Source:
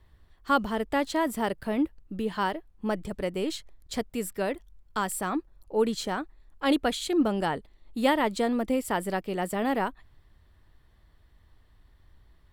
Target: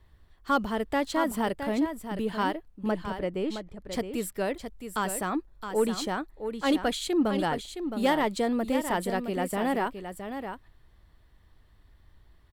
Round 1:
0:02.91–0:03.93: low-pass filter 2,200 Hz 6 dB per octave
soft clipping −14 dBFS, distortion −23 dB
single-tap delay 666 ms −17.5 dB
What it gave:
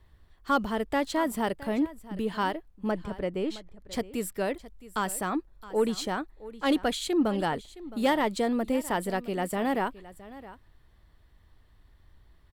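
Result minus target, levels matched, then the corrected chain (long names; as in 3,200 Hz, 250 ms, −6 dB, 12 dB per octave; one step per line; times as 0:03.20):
echo-to-direct −9 dB
0:02.91–0:03.93: low-pass filter 2,200 Hz 6 dB per octave
soft clipping −14 dBFS, distortion −23 dB
single-tap delay 666 ms −8.5 dB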